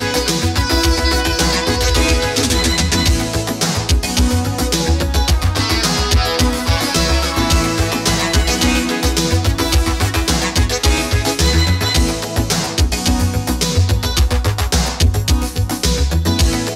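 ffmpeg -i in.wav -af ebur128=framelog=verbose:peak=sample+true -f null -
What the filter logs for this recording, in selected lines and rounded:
Integrated loudness:
  I:         -15.5 LUFS
  Threshold: -25.4 LUFS
Loudness range:
  LRA:         1.4 LU
  Threshold: -35.4 LUFS
  LRA low:   -16.2 LUFS
  LRA high:  -14.8 LUFS
Sample peak:
  Peak:       -3.7 dBFS
True peak:
  Peak:       -3.7 dBFS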